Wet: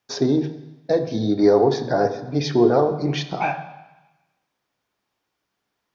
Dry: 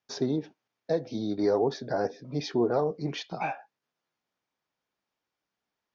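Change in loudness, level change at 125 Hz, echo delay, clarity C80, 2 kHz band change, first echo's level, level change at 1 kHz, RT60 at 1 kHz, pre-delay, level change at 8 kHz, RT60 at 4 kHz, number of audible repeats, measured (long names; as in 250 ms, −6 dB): +9.5 dB, +10.5 dB, no echo audible, 13.0 dB, +8.5 dB, no echo audible, +9.5 dB, 1.1 s, 3 ms, can't be measured, 1.1 s, no echo audible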